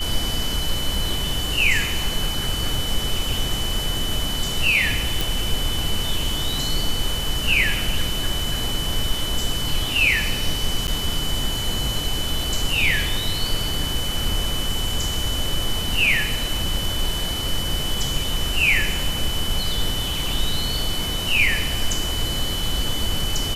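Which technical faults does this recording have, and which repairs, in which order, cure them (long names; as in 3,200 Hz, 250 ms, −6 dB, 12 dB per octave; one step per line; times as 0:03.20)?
whistle 3,000 Hz −27 dBFS
0:05.21: click
0:10.87–0:10.88: drop-out 9.2 ms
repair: click removal
notch filter 3,000 Hz, Q 30
repair the gap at 0:10.87, 9.2 ms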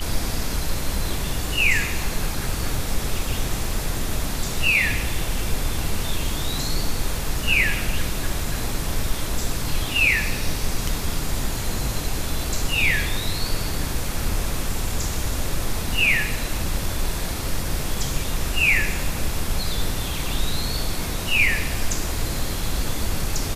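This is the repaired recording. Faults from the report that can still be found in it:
none of them is left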